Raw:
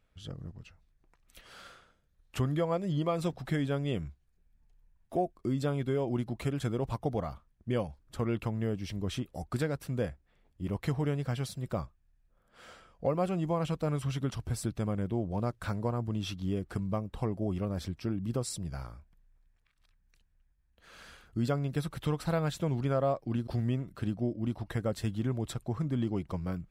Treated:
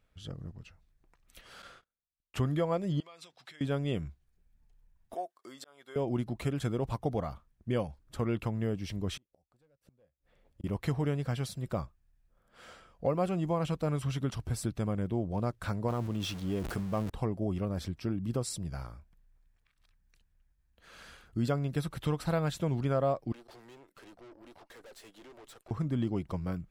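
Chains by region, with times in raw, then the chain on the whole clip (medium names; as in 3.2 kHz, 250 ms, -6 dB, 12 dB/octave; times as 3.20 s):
1.62–2.42 s: gate -58 dBFS, range -31 dB + treble shelf 8.2 kHz -5 dB
3.00–3.61 s: compression, threshold -35 dBFS + band-pass filter 3.9 kHz, Q 0.79
5.14–5.96 s: high-pass 850 Hz + peaking EQ 2.5 kHz -8.5 dB 0.26 oct + slow attack 444 ms
9.17–10.64 s: overload inside the chain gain 27.5 dB + peaking EQ 540 Hz +9 dB 0.37 oct + inverted gate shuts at -35 dBFS, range -38 dB
15.88–17.10 s: jump at every zero crossing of -42.5 dBFS + bass shelf 150 Hz -5.5 dB + decay stretcher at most 41 dB/s
23.32–25.71 s: high-pass 380 Hz 24 dB/octave + valve stage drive 50 dB, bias 0.8
whole clip: none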